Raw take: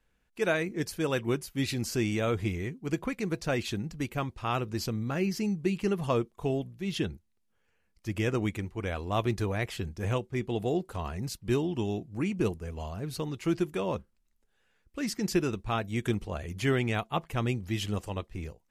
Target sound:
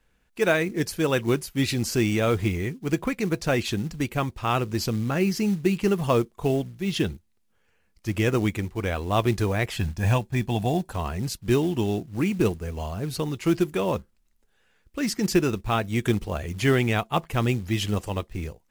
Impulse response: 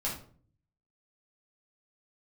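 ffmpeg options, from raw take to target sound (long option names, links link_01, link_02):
-filter_complex "[0:a]asettb=1/sr,asplit=3[link_01][link_02][link_03];[link_01]atrim=end=9.764[link_04];[link_02]atrim=start=9.76:end=10.93,asetpts=PTS-STARTPTS,afade=type=in:duration=0.004:curve=qsin,afade=type=out:start_time=1.166:duration=0.004:curve=qsin,aecho=1:1:1.2:0.61,atrim=end_sample=51597[link_05];[link_03]atrim=start=10.926[link_06];[link_04][link_05]acrossfade=duration=0.004:curve1=hsin:curve2=qsin[link_07];[link_07][link_06]acrossfade=duration=0.004:curve1=qsin:curve2=hsin,acrusher=bits=6:mode=log:mix=0:aa=0.000001,volume=6dB"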